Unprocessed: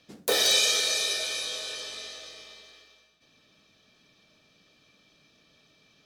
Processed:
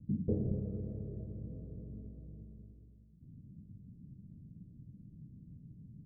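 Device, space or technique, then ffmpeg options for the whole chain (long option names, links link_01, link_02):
the neighbour's flat through the wall: -af "lowpass=frequency=200:width=0.5412,lowpass=frequency=200:width=1.3066,equalizer=frequency=100:width_type=o:width=0.95:gain=6,volume=18dB"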